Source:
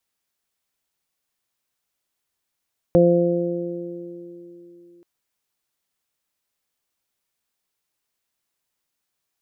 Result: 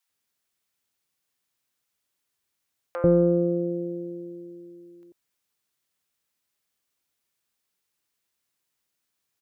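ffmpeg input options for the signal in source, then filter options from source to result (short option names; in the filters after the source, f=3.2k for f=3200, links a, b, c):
-f lavfi -i "aevalsrc='0.158*pow(10,-3*t/2.56)*sin(2*PI*173*t)+0.15*pow(10,-3*t/3.9)*sin(2*PI*346*t)+0.251*pow(10,-3*t/2.26)*sin(2*PI*519*t)+0.0376*pow(10,-3*t/1.69)*sin(2*PI*692*t)':d=2.08:s=44100"
-filter_complex "[0:a]highpass=48,asoftclip=type=tanh:threshold=-8.5dB,acrossover=split=720[a][b];[a]adelay=90[c];[c][b]amix=inputs=2:normalize=0"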